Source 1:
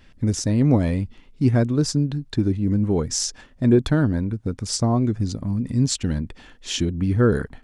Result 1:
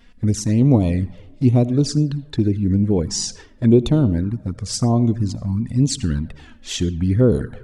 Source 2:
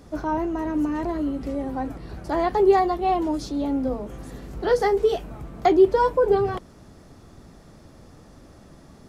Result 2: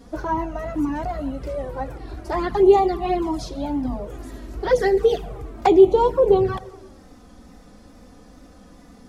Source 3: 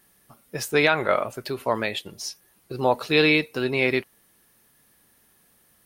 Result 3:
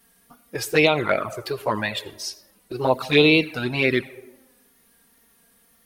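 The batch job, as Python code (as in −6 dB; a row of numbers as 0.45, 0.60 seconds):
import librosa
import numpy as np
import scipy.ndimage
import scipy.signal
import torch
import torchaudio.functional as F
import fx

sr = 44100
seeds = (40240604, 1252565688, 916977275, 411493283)

y = fx.wow_flutter(x, sr, seeds[0], rate_hz=2.1, depth_cents=75.0)
y = fx.rev_freeverb(y, sr, rt60_s=1.2, hf_ratio=0.4, predelay_ms=40, drr_db=17.0)
y = fx.env_flanger(y, sr, rest_ms=4.4, full_db=-15.0)
y = y * 10.0 ** (-3 / 20.0) / np.max(np.abs(y))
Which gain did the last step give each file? +3.5, +4.5, +4.5 decibels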